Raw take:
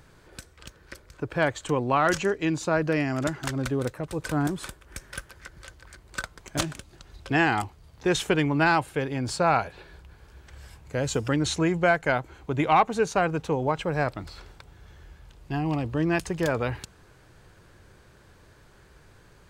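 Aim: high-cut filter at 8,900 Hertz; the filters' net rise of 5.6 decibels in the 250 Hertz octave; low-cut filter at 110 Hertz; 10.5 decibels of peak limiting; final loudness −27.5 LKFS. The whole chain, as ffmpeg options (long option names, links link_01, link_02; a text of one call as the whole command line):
ffmpeg -i in.wav -af "highpass=110,lowpass=8900,equalizer=frequency=250:width_type=o:gain=8,volume=1dB,alimiter=limit=-16dB:level=0:latency=1" out.wav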